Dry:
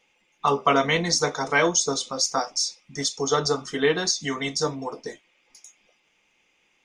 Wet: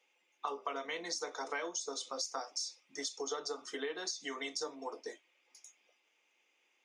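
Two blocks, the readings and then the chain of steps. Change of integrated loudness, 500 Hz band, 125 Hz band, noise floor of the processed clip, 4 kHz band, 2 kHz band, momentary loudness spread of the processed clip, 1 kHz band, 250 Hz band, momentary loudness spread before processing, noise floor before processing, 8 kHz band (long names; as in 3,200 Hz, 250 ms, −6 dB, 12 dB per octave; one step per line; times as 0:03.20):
−16.0 dB, −16.5 dB, below −35 dB, −76 dBFS, −14.5 dB, −16.5 dB, 11 LU, −16.5 dB, −19.0 dB, 8 LU, −67 dBFS, −15.0 dB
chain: downward compressor 12 to 1, threshold −26 dBFS, peak gain reduction 12.5 dB
high-pass filter 300 Hz 24 dB per octave
level −8.5 dB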